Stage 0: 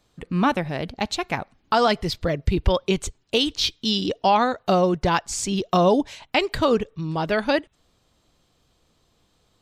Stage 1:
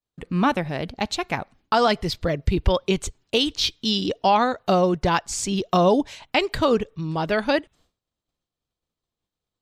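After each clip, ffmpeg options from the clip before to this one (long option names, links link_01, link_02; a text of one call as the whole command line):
ffmpeg -i in.wav -af "agate=range=-33dB:threshold=-50dB:ratio=3:detection=peak" out.wav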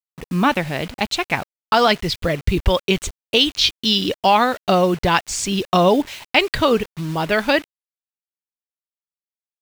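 ffmpeg -i in.wav -af "acrusher=bits=6:mix=0:aa=0.000001,adynamicequalizer=threshold=0.0158:dfrequency=2500:dqfactor=0.91:tfrequency=2500:tqfactor=0.91:attack=5:release=100:ratio=0.375:range=3:mode=boostabove:tftype=bell,volume=2.5dB" out.wav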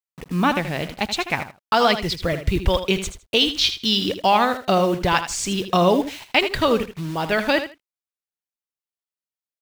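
ffmpeg -i in.wav -af "aecho=1:1:79|158:0.299|0.0508,volume=-2.5dB" out.wav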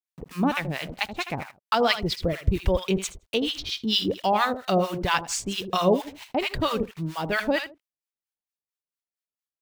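ffmpeg -i in.wav -filter_complex "[0:a]acrossover=split=810[link_01][link_02];[link_01]aeval=exprs='val(0)*(1-1/2+1/2*cos(2*PI*4.4*n/s))':channel_layout=same[link_03];[link_02]aeval=exprs='val(0)*(1-1/2-1/2*cos(2*PI*4.4*n/s))':channel_layout=same[link_04];[link_03][link_04]amix=inputs=2:normalize=0" out.wav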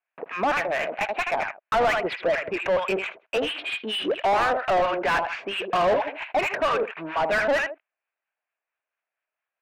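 ffmpeg -i in.wav -filter_complex "[0:a]highpass=480,equalizer=frequency=650:width_type=q:width=4:gain=7,equalizer=frequency=1600:width_type=q:width=4:gain=6,equalizer=frequency=2500:width_type=q:width=4:gain=8,lowpass=frequency=2600:width=0.5412,lowpass=frequency=2600:width=1.3066,asplit=2[link_01][link_02];[link_02]highpass=frequency=720:poles=1,volume=28dB,asoftclip=type=tanh:threshold=-7dB[link_03];[link_01][link_03]amix=inputs=2:normalize=0,lowpass=frequency=1400:poles=1,volume=-6dB,volume=-6dB" out.wav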